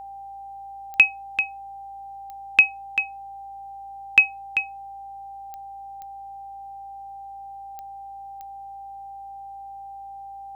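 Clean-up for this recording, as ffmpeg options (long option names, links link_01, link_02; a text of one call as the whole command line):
ffmpeg -i in.wav -af "adeclick=threshold=4,bandreject=frequency=56.3:width_type=h:width=4,bandreject=frequency=112.6:width_type=h:width=4,bandreject=frequency=168.9:width_type=h:width=4,bandreject=frequency=225.2:width_type=h:width=4,bandreject=frequency=281.5:width_type=h:width=4,bandreject=frequency=790:width=30" out.wav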